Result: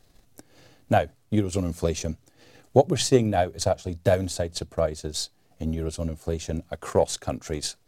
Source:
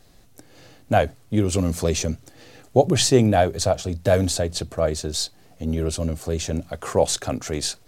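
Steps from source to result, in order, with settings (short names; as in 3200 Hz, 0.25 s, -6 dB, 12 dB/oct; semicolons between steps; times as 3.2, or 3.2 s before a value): transient shaper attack +6 dB, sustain -5 dB; gain -6 dB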